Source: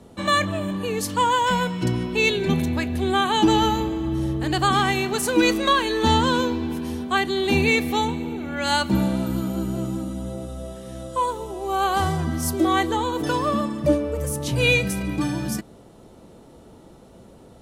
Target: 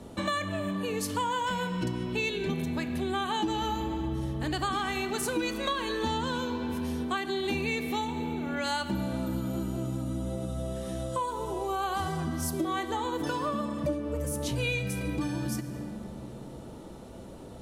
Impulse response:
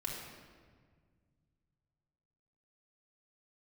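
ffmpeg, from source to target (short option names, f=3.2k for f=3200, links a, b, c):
-filter_complex "[0:a]asplit=2[a][b];[1:a]atrim=start_sample=2205,asetrate=36603,aresample=44100[c];[b][c]afir=irnorm=-1:irlink=0,volume=-9.5dB[d];[a][d]amix=inputs=2:normalize=0,acompressor=threshold=-30dB:ratio=4"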